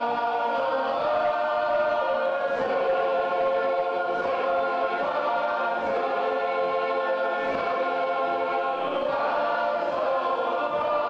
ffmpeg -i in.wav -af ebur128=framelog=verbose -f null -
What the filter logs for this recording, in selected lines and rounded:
Integrated loudness:
  I:         -25.4 LUFS
  Threshold: -35.4 LUFS
Loudness range:
  LRA:         1.2 LU
  Threshold: -45.4 LUFS
  LRA low:   -25.9 LUFS
  LRA high:  -24.7 LUFS